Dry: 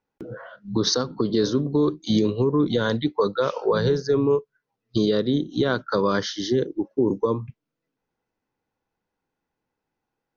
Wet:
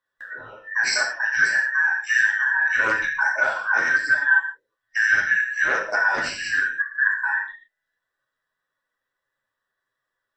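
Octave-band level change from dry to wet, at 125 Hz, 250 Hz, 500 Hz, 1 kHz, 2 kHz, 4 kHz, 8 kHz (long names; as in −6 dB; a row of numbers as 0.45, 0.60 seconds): below −20 dB, −23.5 dB, −14.5 dB, +2.5 dB, +20.5 dB, −3.5 dB, can't be measured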